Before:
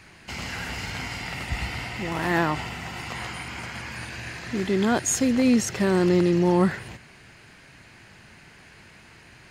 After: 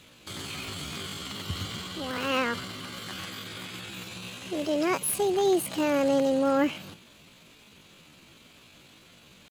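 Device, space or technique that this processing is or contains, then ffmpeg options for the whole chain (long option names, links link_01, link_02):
chipmunk voice: -af "asetrate=68011,aresample=44100,atempo=0.64842,volume=-4dB"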